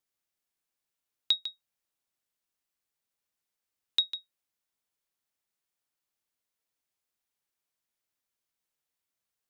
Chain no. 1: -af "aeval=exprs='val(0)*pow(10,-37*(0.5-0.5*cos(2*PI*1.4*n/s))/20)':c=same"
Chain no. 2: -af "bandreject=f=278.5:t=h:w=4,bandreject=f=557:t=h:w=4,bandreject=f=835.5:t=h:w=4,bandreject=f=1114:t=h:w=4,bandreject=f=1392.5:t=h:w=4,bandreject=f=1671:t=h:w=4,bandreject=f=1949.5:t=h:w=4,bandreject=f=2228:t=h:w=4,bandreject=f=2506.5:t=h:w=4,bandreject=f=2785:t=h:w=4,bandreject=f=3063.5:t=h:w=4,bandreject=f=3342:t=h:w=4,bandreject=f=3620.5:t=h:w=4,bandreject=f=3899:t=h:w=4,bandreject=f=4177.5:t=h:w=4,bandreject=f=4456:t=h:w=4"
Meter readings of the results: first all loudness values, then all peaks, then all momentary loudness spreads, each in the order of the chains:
-37.5 LUFS, -31.0 LUFS; -24.0 dBFS, -14.0 dBFS; 17 LU, 12 LU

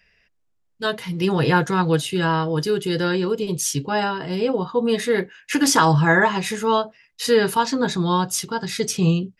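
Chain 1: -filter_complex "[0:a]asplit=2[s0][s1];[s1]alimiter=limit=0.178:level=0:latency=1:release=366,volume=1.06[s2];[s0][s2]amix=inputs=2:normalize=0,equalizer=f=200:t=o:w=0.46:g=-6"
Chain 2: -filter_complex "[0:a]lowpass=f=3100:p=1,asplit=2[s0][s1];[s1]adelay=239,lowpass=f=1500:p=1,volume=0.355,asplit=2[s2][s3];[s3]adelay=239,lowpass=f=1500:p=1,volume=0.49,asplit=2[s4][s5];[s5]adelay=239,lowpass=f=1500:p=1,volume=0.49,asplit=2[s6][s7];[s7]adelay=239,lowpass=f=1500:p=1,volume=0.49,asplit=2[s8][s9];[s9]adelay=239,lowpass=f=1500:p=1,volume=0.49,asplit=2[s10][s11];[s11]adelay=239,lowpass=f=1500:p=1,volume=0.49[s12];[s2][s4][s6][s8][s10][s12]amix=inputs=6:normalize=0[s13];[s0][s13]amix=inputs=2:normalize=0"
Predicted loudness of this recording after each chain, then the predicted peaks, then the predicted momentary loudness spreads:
-17.5 LUFS, -21.0 LUFS; -1.5 dBFS, -4.0 dBFS; 7 LU, 9 LU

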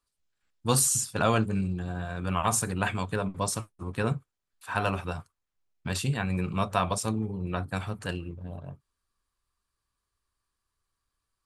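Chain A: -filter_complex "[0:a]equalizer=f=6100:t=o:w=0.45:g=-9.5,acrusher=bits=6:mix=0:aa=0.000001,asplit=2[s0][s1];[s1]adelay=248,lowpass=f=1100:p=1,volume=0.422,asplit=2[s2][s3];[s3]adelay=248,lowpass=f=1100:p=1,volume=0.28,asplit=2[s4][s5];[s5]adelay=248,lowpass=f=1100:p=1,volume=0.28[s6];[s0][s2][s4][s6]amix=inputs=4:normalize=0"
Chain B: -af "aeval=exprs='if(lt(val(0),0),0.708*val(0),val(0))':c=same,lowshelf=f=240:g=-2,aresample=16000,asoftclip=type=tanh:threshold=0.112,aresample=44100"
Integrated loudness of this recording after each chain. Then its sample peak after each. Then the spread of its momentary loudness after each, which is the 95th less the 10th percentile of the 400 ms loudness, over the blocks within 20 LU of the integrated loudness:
-29.5 LUFS, -33.5 LUFS; -9.5 dBFS, -19.0 dBFS; 13 LU, 11 LU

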